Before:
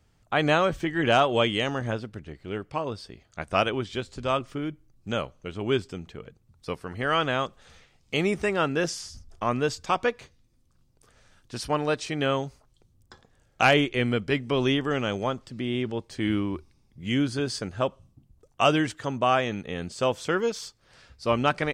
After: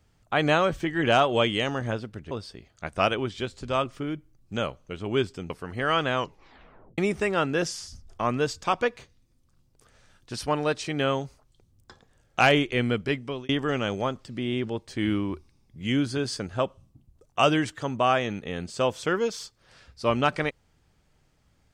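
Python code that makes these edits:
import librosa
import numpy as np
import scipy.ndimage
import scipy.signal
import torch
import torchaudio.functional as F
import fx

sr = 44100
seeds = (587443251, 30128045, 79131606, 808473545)

y = fx.edit(x, sr, fx.cut(start_s=2.31, length_s=0.55),
    fx.cut(start_s=6.05, length_s=0.67),
    fx.tape_stop(start_s=7.36, length_s=0.84),
    fx.fade_out_span(start_s=14.11, length_s=0.6, curve='qsin'), tone=tone)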